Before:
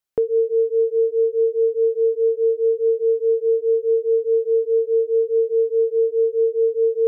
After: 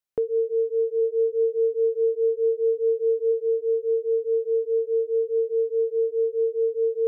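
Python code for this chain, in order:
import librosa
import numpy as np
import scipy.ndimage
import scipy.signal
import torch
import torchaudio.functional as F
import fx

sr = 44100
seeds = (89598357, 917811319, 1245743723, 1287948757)

y = fx.peak_eq(x, sr, hz=130.0, db=13.5, octaves=1.2, at=(1.01, 3.31), fade=0.02)
y = y * librosa.db_to_amplitude(-5.0)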